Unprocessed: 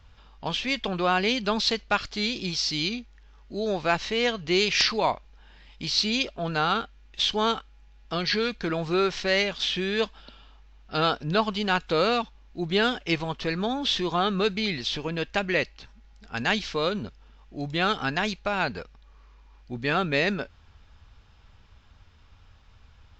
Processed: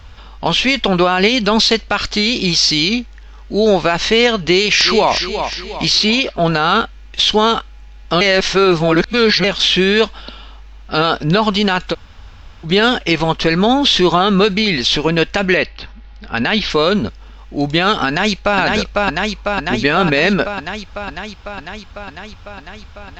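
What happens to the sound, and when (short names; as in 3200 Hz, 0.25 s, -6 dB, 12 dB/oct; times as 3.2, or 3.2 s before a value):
4.44–5.14 echo throw 0.36 s, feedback 45%, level -13 dB
5.95–6.35 tone controls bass -4 dB, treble -6 dB
8.21–9.44 reverse
11.92–12.66 room tone, crossfade 0.06 s
15.57–16.7 LPF 4700 Hz 24 dB/oct
18.07–18.59 echo throw 0.5 s, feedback 75%, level -4.5 dB
whole clip: bell 130 Hz -9 dB 0.32 oct; maximiser +18.5 dB; gain -2.5 dB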